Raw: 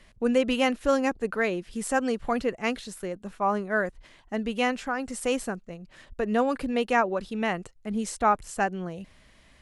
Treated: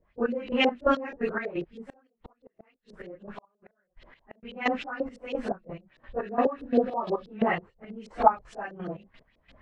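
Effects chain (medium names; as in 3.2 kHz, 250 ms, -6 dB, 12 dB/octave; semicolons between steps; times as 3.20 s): phase randomisation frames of 100 ms; 6.25–7.20 s: spectral replace 1.3–8.2 kHz both; trance gate "..x...xx" 174 bpm -12 dB; LFO low-pass saw up 6.2 Hz 430–4400 Hz; 1.80–4.43 s: inverted gate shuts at -28 dBFS, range -39 dB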